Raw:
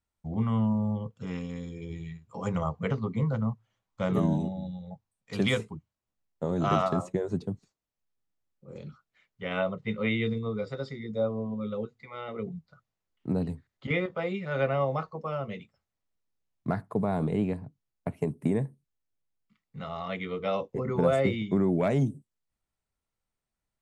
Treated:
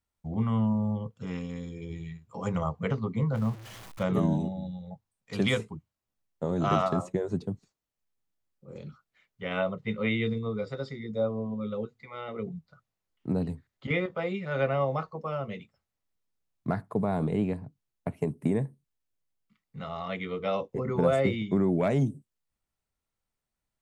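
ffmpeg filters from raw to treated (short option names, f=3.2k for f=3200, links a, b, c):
-filter_complex "[0:a]asettb=1/sr,asplit=3[a][b][c];[a]atrim=end=3.354[d];[b]atrim=start=3.35:end=4.03,asetpts=PTS-STARTPTS,afade=t=in:d=0.004:c=qsin,afade=t=out:st=0.676:d=0.004:c=qsin,aeval=exprs='val(0)+0.5*0.0106*sgn(val(0))':c=same[e];[c]atrim=start=4.026[f];[d][e]acrossfade=d=0.004:c1=hsin:c2=qsin[g];[g][f]acrossfade=d=0.004:c1=qsin:c2=hsin"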